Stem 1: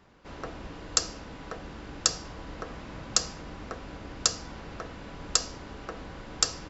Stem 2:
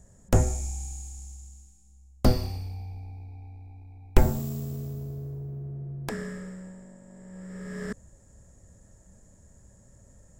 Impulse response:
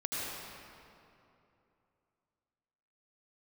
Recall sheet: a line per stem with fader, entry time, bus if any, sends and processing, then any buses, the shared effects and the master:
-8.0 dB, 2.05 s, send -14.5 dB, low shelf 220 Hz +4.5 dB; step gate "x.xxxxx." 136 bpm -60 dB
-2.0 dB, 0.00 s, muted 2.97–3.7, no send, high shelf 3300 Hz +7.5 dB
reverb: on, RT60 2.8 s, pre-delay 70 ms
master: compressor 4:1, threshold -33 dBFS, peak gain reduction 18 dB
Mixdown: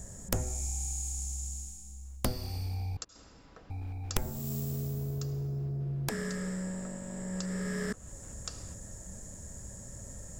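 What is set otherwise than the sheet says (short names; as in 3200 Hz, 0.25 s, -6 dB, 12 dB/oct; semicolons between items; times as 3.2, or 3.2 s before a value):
stem 1 -8.0 dB -> -17.0 dB; stem 2 -2.0 dB -> +8.5 dB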